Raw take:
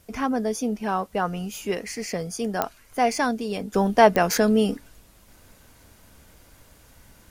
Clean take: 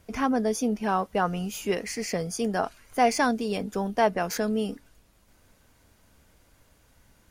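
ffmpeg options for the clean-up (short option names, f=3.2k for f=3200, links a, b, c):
-af "adeclick=t=4,agate=range=-21dB:threshold=-46dB,asetnsamples=n=441:p=0,asendcmd='3.74 volume volume -7.5dB',volume=0dB"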